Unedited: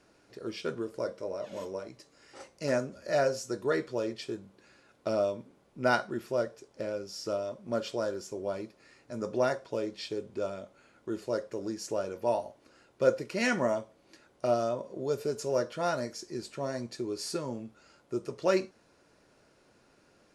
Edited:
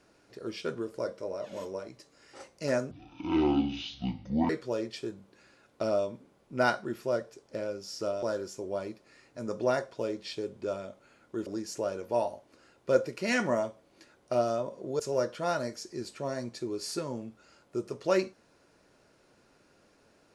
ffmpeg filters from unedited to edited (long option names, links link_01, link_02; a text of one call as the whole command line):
ffmpeg -i in.wav -filter_complex "[0:a]asplit=6[link_01][link_02][link_03][link_04][link_05][link_06];[link_01]atrim=end=2.914[link_07];[link_02]atrim=start=2.91:end=3.75,asetpts=PTS-STARTPTS,asetrate=23373,aresample=44100,atrim=end_sample=69894,asetpts=PTS-STARTPTS[link_08];[link_03]atrim=start=3.746:end=7.482[link_09];[link_04]atrim=start=7.958:end=11.202[link_10];[link_05]atrim=start=11.588:end=15.122[link_11];[link_06]atrim=start=15.368[link_12];[link_07][link_08]acrossfade=duration=0.004:curve1=hsin:curve2=hsin[link_13];[link_13][link_09]acrossfade=duration=0.004:curve1=hsin:curve2=hsin[link_14];[link_14][link_10]acrossfade=duration=0.004:curve1=hsin:curve2=hsin[link_15];[link_15][link_11]acrossfade=duration=0.004:curve1=hsin:curve2=hsin[link_16];[link_16][link_12]acrossfade=duration=0.004:curve1=hsin:curve2=hsin" out.wav